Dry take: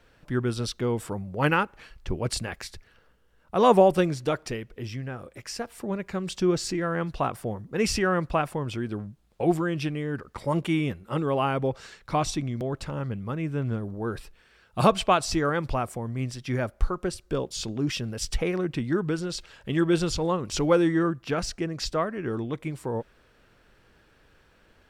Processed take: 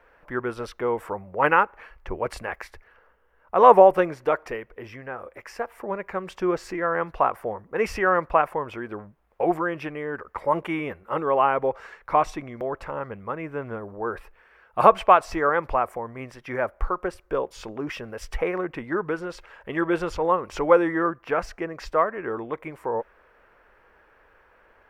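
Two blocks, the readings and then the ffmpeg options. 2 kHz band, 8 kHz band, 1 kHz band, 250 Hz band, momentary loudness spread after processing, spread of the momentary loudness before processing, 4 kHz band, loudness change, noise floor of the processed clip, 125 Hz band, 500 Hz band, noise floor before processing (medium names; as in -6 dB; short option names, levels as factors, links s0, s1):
+4.0 dB, under -10 dB, +7.0 dB, -3.5 dB, 17 LU, 12 LU, -9.0 dB, +3.0 dB, -59 dBFS, -10.0 dB, +3.5 dB, -61 dBFS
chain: -af "equalizer=f=125:t=o:w=1:g=-10,equalizer=f=250:t=o:w=1:g=-4,equalizer=f=500:t=o:w=1:g=6,equalizer=f=1000:t=o:w=1:g=9,equalizer=f=2000:t=o:w=1:g=7,equalizer=f=4000:t=o:w=1:g=-10,equalizer=f=8000:t=o:w=1:g=-10,volume=0.794"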